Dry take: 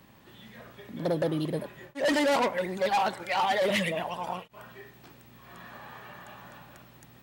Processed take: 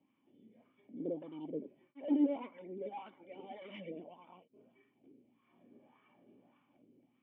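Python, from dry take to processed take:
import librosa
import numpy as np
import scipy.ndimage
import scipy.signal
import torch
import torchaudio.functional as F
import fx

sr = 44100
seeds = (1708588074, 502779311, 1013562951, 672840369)

y = fx.formant_cascade(x, sr, vowel='i')
y = fx.cheby_harmonics(y, sr, harmonics=(3, 7), levels_db=(-22, -44), full_scale_db=-22.5)
y = fx.wah_lfo(y, sr, hz=1.7, low_hz=420.0, high_hz=1200.0, q=4.1)
y = y * 10.0 ** (14.5 / 20.0)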